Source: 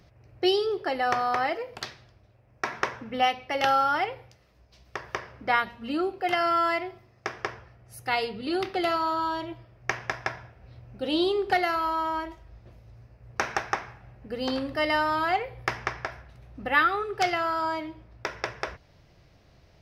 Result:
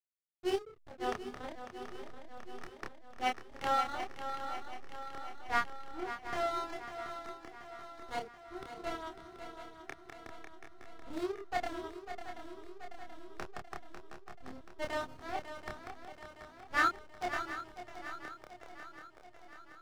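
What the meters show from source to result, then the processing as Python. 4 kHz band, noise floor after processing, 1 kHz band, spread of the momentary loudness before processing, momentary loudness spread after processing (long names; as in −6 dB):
−14.0 dB, −56 dBFS, −11.5 dB, 14 LU, 17 LU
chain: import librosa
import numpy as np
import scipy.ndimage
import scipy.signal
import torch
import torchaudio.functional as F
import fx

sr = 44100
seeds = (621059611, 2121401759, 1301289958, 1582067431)

y = fx.wiener(x, sr, points=25)
y = fx.dereverb_blind(y, sr, rt60_s=1.2)
y = fx.transient(y, sr, attack_db=-7, sustain_db=0)
y = fx.backlash(y, sr, play_db=-23.5)
y = fx.doubler(y, sr, ms=28.0, db=-2.5)
y = fx.echo_swing(y, sr, ms=731, ratio=3, feedback_pct=61, wet_db=-7.0)
y = fx.upward_expand(y, sr, threshold_db=-37.0, expansion=1.5)
y = y * librosa.db_to_amplitude(-3.5)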